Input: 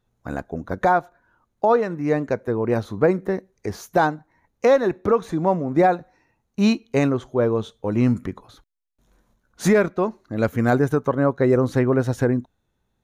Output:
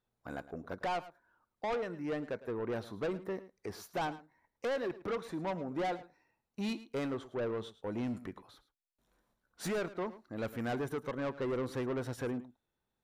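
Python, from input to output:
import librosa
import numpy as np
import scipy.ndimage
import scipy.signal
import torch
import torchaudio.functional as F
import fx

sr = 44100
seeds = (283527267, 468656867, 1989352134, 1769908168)

y = fx.low_shelf(x, sr, hz=210.0, db=-10.0)
y = fx.notch(y, sr, hz=6500.0, q=6.5)
y = 10.0 ** (-22.0 / 20.0) * np.tanh(y / 10.0 ** (-22.0 / 20.0))
y = y + 10.0 ** (-16.5 / 20.0) * np.pad(y, (int(108 * sr / 1000.0), 0))[:len(y)]
y = F.gain(torch.from_numpy(y), -9.0).numpy()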